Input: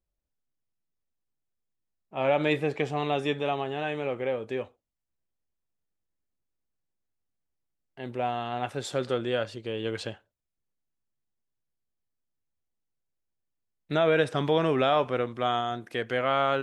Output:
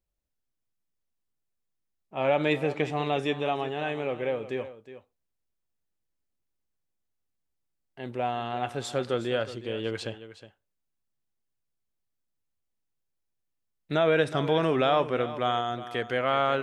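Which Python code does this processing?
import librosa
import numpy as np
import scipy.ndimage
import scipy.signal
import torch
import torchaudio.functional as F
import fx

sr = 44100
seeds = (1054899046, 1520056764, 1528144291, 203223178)

y = x + 10.0 ** (-14.0 / 20.0) * np.pad(x, (int(364 * sr / 1000.0), 0))[:len(x)]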